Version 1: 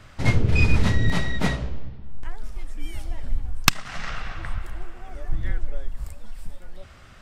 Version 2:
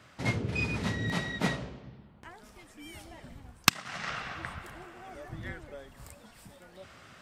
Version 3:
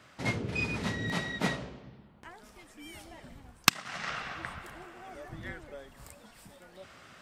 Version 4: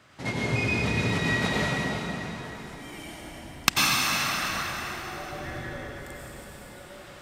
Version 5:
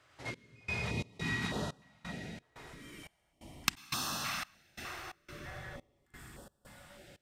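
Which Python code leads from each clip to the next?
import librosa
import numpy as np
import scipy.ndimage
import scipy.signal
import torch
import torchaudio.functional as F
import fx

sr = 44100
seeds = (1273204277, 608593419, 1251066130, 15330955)

y1 = scipy.signal.sosfilt(scipy.signal.butter(2, 140.0, 'highpass', fs=sr, output='sos'), x)
y1 = fx.rider(y1, sr, range_db=4, speed_s=0.5)
y1 = y1 * 10.0 ** (-5.5 / 20.0)
y2 = fx.peak_eq(y1, sr, hz=87.0, db=-4.5, octaves=1.7)
y3 = fx.rev_plate(y2, sr, seeds[0], rt60_s=3.8, hf_ratio=0.9, predelay_ms=80, drr_db=-6.5)
y4 = fx.step_gate(y3, sr, bpm=88, pattern='xx..xx.x', floor_db=-24.0, edge_ms=4.5)
y4 = fx.filter_held_notch(y4, sr, hz=3.3, low_hz=200.0, high_hz=2200.0)
y4 = y4 * 10.0 ** (-8.5 / 20.0)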